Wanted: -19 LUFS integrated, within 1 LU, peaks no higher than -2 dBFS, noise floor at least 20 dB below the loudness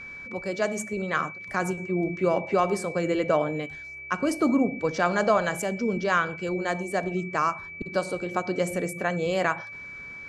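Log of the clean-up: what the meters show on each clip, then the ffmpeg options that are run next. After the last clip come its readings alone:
steady tone 2.3 kHz; tone level -38 dBFS; loudness -27.0 LUFS; peak level -8.5 dBFS; loudness target -19.0 LUFS
-> -af "bandreject=f=2300:w=30"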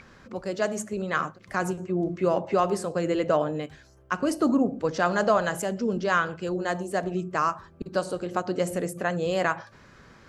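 steady tone not found; loudness -27.0 LUFS; peak level -9.0 dBFS; loudness target -19.0 LUFS
-> -af "volume=2.51,alimiter=limit=0.794:level=0:latency=1"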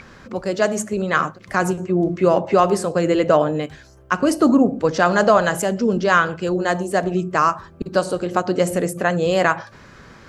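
loudness -19.0 LUFS; peak level -2.0 dBFS; noise floor -46 dBFS

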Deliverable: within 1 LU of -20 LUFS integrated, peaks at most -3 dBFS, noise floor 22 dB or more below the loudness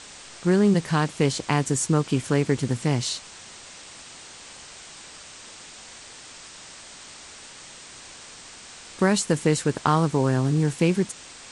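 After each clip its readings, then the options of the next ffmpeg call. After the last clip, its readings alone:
noise floor -44 dBFS; noise floor target -45 dBFS; loudness -23.0 LUFS; peak level -7.0 dBFS; loudness target -20.0 LUFS
-> -af "afftdn=nr=6:nf=-44"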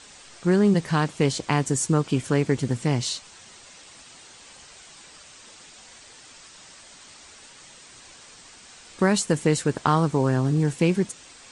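noise floor -48 dBFS; loudness -23.5 LUFS; peak level -7.0 dBFS; loudness target -20.0 LUFS
-> -af "volume=1.5"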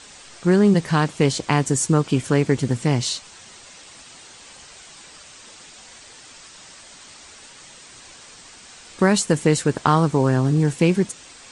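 loudness -19.5 LUFS; peak level -3.5 dBFS; noise floor -45 dBFS

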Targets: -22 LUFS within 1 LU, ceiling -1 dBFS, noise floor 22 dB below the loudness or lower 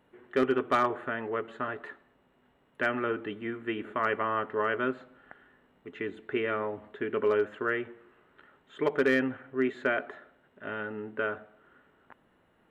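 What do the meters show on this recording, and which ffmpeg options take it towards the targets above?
loudness -31.0 LUFS; peak level -17.0 dBFS; loudness target -22.0 LUFS
-> -af "volume=2.82"

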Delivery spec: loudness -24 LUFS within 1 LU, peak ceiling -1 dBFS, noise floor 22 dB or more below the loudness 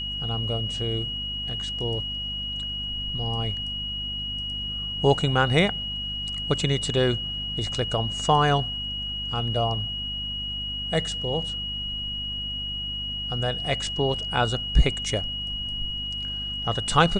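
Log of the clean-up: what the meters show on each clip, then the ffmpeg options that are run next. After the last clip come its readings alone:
hum 50 Hz; highest harmonic 250 Hz; hum level -36 dBFS; steady tone 2.9 kHz; tone level -29 dBFS; loudness -26.0 LUFS; peak level -5.0 dBFS; loudness target -24.0 LUFS
-> -af "bandreject=f=50:t=h:w=6,bandreject=f=100:t=h:w=6,bandreject=f=150:t=h:w=6,bandreject=f=200:t=h:w=6,bandreject=f=250:t=h:w=6"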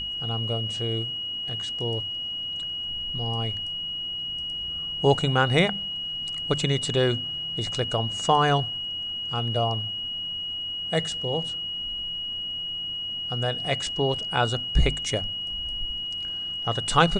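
hum not found; steady tone 2.9 kHz; tone level -29 dBFS
-> -af "bandreject=f=2900:w=30"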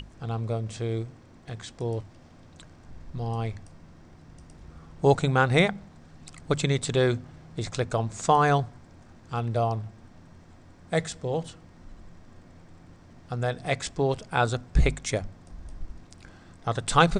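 steady tone not found; loudness -27.0 LUFS; peak level -4.5 dBFS; loudness target -24.0 LUFS
-> -af "volume=1.41"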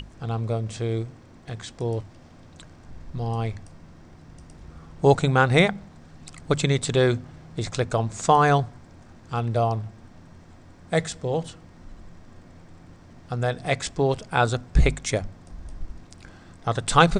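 loudness -24.0 LUFS; peak level -1.5 dBFS; noise floor -49 dBFS

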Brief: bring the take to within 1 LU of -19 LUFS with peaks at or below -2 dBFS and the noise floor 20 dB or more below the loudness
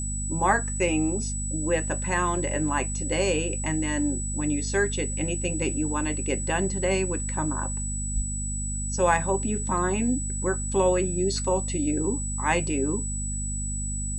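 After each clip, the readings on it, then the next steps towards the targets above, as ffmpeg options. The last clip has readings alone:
hum 50 Hz; highest harmonic 250 Hz; hum level -29 dBFS; steady tone 7.9 kHz; tone level -32 dBFS; loudness -26.0 LUFS; peak level -8.5 dBFS; loudness target -19.0 LUFS
-> -af "bandreject=f=50:t=h:w=6,bandreject=f=100:t=h:w=6,bandreject=f=150:t=h:w=6,bandreject=f=200:t=h:w=6,bandreject=f=250:t=h:w=6"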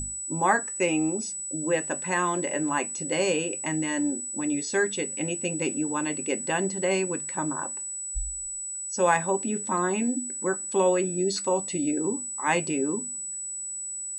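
hum not found; steady tone 7.9 kHz; tone level -32 dBFS
-> -af "bandreject=f=7900:w=30"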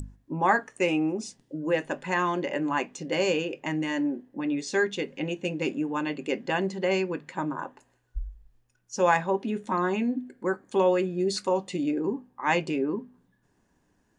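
steady tone not found; loudness -28.0 LUFS; peak level -9.5 dBFS; loudness target -19.0 LUFS
-> -af "volume=2.82,alimiter=limit=0.794:level=0:latency=1"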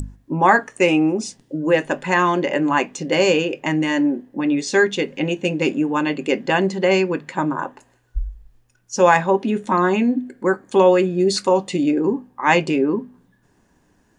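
loudness -19.0 LUFS; peak level -2.0 dBFS; noise floor -61 dBFS

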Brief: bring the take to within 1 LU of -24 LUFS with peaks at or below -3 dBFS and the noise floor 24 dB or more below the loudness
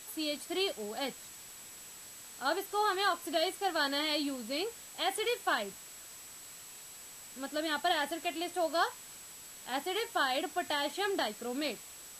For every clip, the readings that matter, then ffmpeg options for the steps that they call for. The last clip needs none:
steady tone 7.8 kHz; tone level -51 dBFS; noise floor -50 dBFS; noise floor target -58 dBFS; loudness -33.5 LUFS; peak level -16.5 dBFS; loudness target -24.0 LUFS
-> -af "bandreject=f=7800:w=30"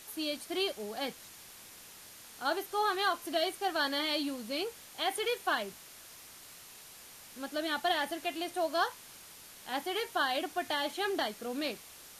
steady tone not found; noise floor -52 dBFS; noise floor target -58 dBFS
-> -af "afftdn=nr=6:nf=-52"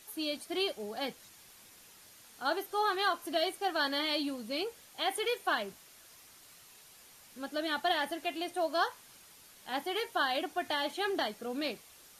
noise floor -57 dBFS; noise floor target -58 dBFS
-> -af "afftdn=nr=6:nf=-57"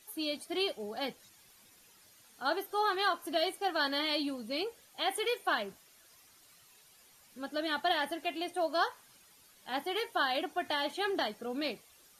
noise floor -62 dBFS; loudness -33.5 LUFS; peak level -16.5 dBFS; loudness target -24.0 LUFS
-> -af "volume=2.99"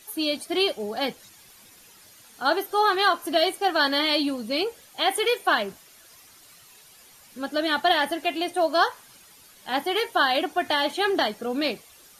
loudness -24.0 LUFS; peak level -7.0 dBFS; noise floor -52 dBFS

